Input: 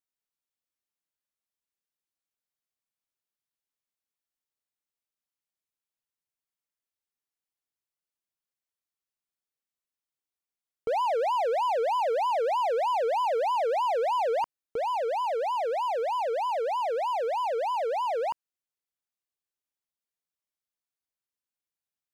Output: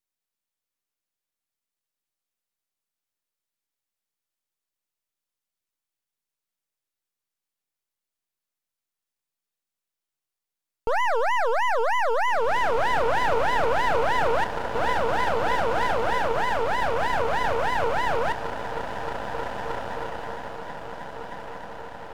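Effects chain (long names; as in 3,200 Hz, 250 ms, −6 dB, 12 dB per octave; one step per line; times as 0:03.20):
feedback delay with all-pass diffusion 1,905 ms, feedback 52%, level −7.5 dB
harmonic generator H 6 −28 dB, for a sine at −15.5 dBFS
half-wave rectification
level +7 dB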